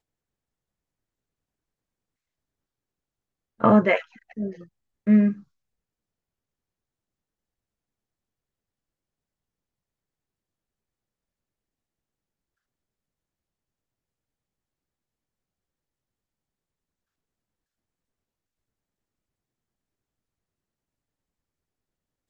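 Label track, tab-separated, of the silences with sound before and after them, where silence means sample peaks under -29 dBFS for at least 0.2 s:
4.000000	4.380000	silence
4.500000	5.070000	silence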